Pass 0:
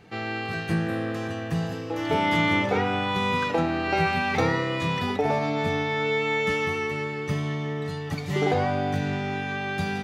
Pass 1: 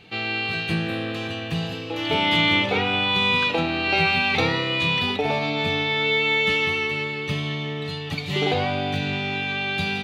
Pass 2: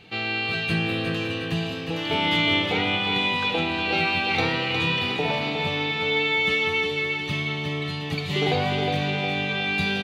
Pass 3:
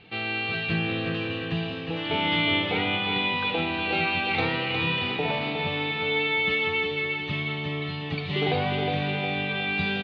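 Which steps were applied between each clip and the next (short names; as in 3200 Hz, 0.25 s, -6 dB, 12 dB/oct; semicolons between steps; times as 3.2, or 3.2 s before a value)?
band shelf 3200 Hz +11.5 dB 1.1 oct
feedback echo 0.36 s, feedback 50%, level -6 dB; in parallel at -1.5 dB: vocal rider 2 s; on the sum: gain -8 dB
LPF 3900 Hz 24 dB/oct; gain -2 dB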